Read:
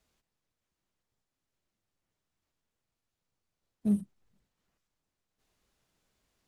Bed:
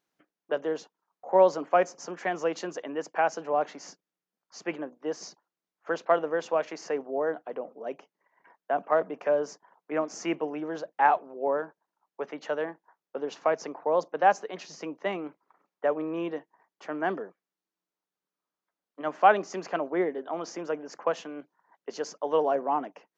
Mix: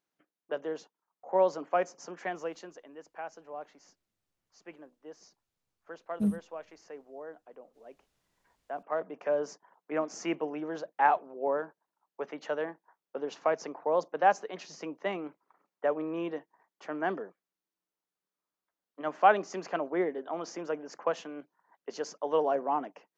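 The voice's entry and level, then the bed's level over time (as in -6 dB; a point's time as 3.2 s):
2.35 s, -1.0 dB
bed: 2.29 s -5.5 dB
2.87 s -15.5 dB
8.28 s -15.5 dB
9.46 s -2.5 dB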